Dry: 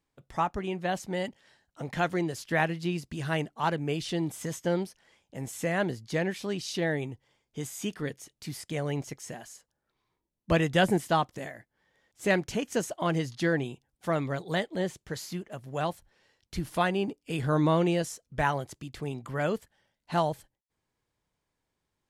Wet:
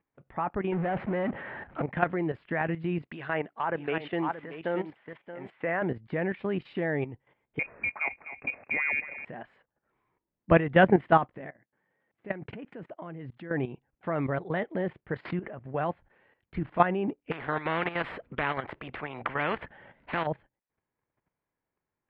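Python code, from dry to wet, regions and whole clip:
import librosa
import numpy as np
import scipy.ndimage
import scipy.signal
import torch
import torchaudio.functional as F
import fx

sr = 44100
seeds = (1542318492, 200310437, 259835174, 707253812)

y = fx.chain(x, sr, fx.lowpass(hz=2100.0, slope=12),
    fx.power_curve(exponent=0.5), at=(0.72, 1.82))
y = fx.chain(y, sr, fx.riaa(side='recording'),
    fx.env_lowpass_down(base_hz=1600.0, full_db=-25.0),
    fx.echo_single(ms=627, db=-8.5), at=(3.02, 5.82))
y = fx.chain(y, sr, fx.echo_feedback(ms=248, feedback_pct=25, wet_db=-15.5),
    fx.freq_invert(carrier_hz=2600),
    fx.band_squash(depth_pct=70), at=(7.59, 9.25))
y = fx.chain(y, sr, fx.highpass(hz=140.0, slope=12),
    fx.low_shelf(hz=220.0, db=8.5),
    fx.level_steps(step_db=20), at=(11.41, 13.51))
y = fx.chain(y, sr, fx.air_absorb(metres=160.0),
    fx.pre_swell(db_per_s=22.0), at=(15.25, 15.65))
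y = fx.chain(y, sr, fx.dynamic_eq(hz=5800.0, q=0.85, threshold_db=-52.0, ratio=4.0, max_db=-4),
    fx.spectral_comp(ratio=4.0), at=(17.31, 20.27))
y = scipy.signal.sosfilt(scipy.signal.cheby2(4, 50, 5700.0, 'lowpass', fs=sr, output='sos'), y)
y = fx.low_shelf(y, sr, hz=83.0, db=-9.5)
y = fx.level_steps(y, sr, step_db=12)
y = y * librosa.db_to_amplitude(7.5)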